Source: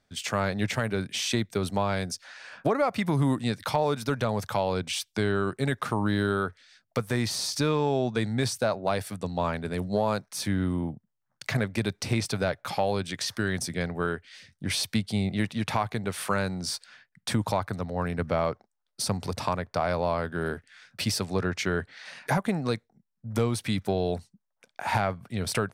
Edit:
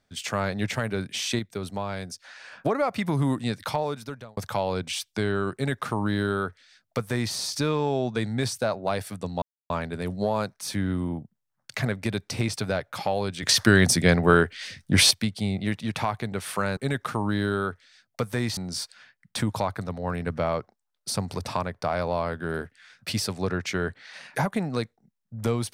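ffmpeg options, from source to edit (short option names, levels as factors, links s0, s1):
-filter_complex "[0:a]asplit=9[s0][s1][s2][s3][s4][s5][s6][s7][s8];[s0]atrim=end=1.392[s9];[s1]atrim=start=1.388:end=2.242,asetpts=PTS-STARTPTS,volume=0.596[s10];[s2]atrim=start=2.238:end=4.37,asetpts=PTS-STARTPTS,afade=t=out:st=1.412:d=0.72[s11];[s3]atrim=start=4.37:end=9.42,asetpts=PTS-STARTPTS,afade=t=in:d=0.004:c=hsin,afade=t=out:st=5.046:d=0.004:c=hsin,apad=pad_dur=0.28[s12];[s4]atrim=start=9.42:end=13.152,asetpts=PTS-STARTPTS,afade=t=in:d=0.004:c=hsin[s13];[s5]atrim=start=13.148:end=14.832,asetpts=PTS-STARTPTS,volume=3.55[s14];[s6]atrim=start=14.828:end=16.492[s15];[s7]atrim=start=5.538:end=7.342[s16];[s8]atrim=start=16.488[s17];[s9][s10]acrossfade=d=0.004:c1=hsin:c2=hsin[s18];[s11][s12][s13]concat=n=3:v=0:a=1[s19];[s18][s19]acrossfade=d=0.004:c1=hsin:c2=hsin[s20];[s20][s14]acrossfade=d=0.004:c1=hsin:c2=hsin[s21];[s21][s15]acrossfade=d=0.004:c1=hsin:c2=hsin[s22];[s22][s16]acrossfade=d=0.004:c1=hsin:c2=hsin[s23];[s23][s17]acrossfade=d=0.004:c1=hsin:c2=hsin"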